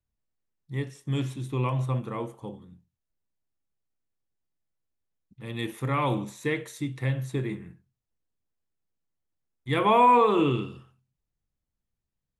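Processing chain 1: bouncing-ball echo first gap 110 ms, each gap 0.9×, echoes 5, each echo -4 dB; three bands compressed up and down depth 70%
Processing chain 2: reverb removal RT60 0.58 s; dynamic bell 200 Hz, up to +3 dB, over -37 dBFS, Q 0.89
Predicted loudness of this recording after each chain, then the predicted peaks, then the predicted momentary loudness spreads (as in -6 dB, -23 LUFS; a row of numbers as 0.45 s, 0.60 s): -27.5 LUFS, -26.5 LUFS; -12.0 dBFS, -10.5 dBFS; 15 LU, 19 LU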